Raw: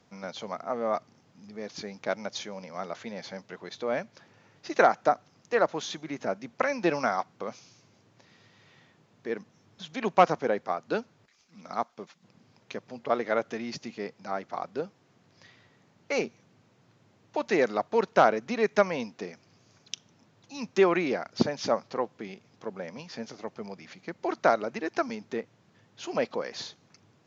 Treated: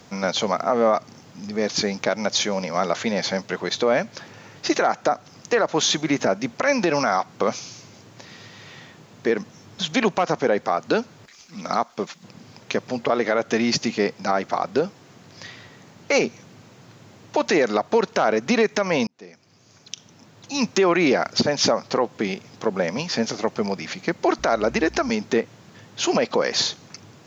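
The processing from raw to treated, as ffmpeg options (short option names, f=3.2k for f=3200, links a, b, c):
-filter_complex "[0:a]asettb=1/sr,asplit=3[a][b][c];[a]atrim=end=24.394[d];[b]atrim=start=24.39:end=25.1,asetpts=PTS-STARTPTS,afade=t=in:d=0.004:c=qsin,afade=t=out:st=0.706:d=0.004:c=qsin,aeval=exprs='val(0)+0.00224*(sin(2*PI*60*n/s)+sin(2*PI*2*60*n/s)/2+sin(2*PI*3*60*n/s)/3+sin(2*PI*4*60*n/s)/4+sin(2*PI*5*60*n/s)/5)':c=same[e];[c]atrim=start=25.096[f];[d][e]acrossfade=d=0.004:c1=hsin:c2=qsin[g];[g][f]acrossfade=d=0.004:c1=qsin:c2=hsin,asplit=2[h][i];[h]atrim=end=19.07,asetpts=PTS-STARTPTS,afade=t=out:st=19.066:d=0.004:c=hsin[j];[i]atrim=start=19.07,asetpts=PTS-STARTPTS,afade=t=in:d=1.74[k];[j][k]concat=n=2:v=0:a=1,highshelf=f=5.8k:g=7,acompressor=threshold=-30dB:ratio=2,alimiter=level_in=23dB:limit=-1dB:release=50:level=0:latency=1,volume=-8dB"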